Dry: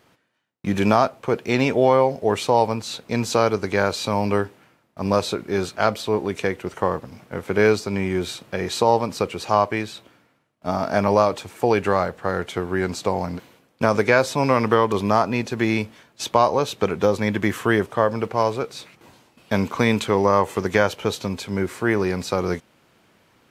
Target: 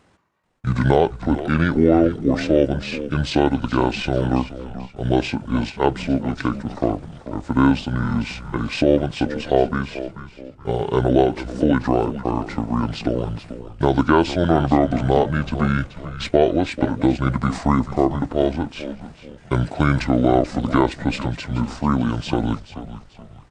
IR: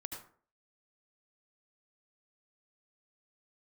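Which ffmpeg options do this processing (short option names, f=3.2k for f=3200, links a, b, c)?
-filter_complex "[0:a]asplit=5[a][b][c][d][e];[b]adelay=435,afreqshift=-100,volume=-12.5dB[f];[c]adelay=870,afreqshift=-200,volume=-20.9dB[g];[d]adelay=1305,afreqshift=-300,volume=-29.3dB[h];[e]adelay=1740,afreqshift=-400,volume=-37.7dB[i];[a][f][g][h][i]amix=inputs=5:normalize=0,asetrate=27781,aresample=44100,atempo=1.5874,volume=1.5dB"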